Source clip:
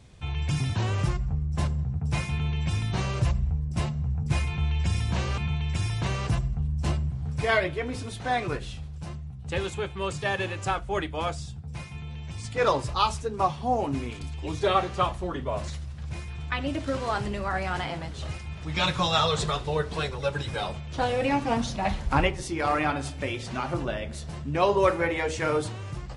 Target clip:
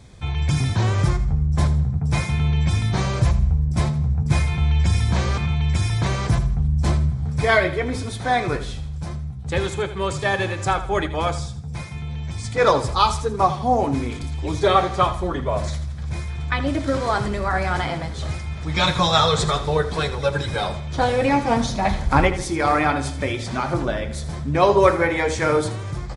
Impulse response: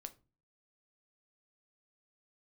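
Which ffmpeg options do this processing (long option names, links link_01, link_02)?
-filter_complex "[0:a]bandreject=frequency=2800:width=5.8,asplit=2[link_01][link_02];[link_02]aecho=0:1:81|162|243|324:0.224|0.0806|0.029|0.0104[link_03];[link_01][link_03]amix=inputs=2:normalize=0,volume=6.5dB"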